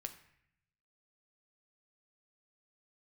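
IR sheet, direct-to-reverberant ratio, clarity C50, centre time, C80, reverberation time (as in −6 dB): 6.5 dB, 12.0 dB, 9 ms, 14.5 dB, 0.70 s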